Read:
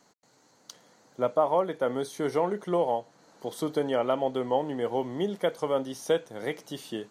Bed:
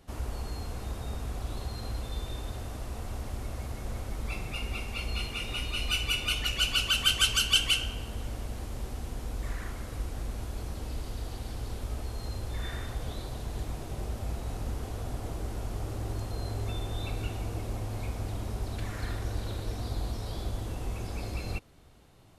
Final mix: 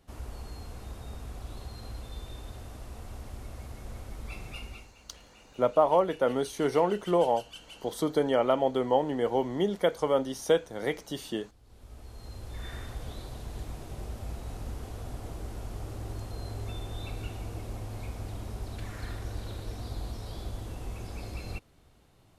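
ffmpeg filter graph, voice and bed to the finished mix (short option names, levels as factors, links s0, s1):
-filter_complex "[0:a]adelay=4400,volume=1.19[s0];[1:a]volume=5.31,afade=t=out:st=4.57:d=0.37:silence=0.125893,afade=t=in:st=11.63:d=1.14:silence=0.1[s1];[s0][s1]amix=inputs=2:normalize=0"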